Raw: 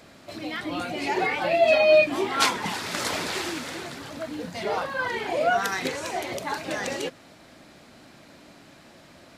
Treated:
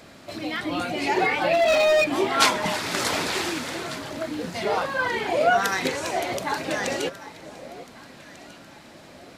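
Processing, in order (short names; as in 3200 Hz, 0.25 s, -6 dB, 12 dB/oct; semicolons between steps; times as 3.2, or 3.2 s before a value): 1.53–2.15 overloaded stage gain 19.5 dB; on a send: echo with dull and thin repeats by turns 0.747 s, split 1000 Hz, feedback 53%, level -14 dB; on the sum: gain +3 dB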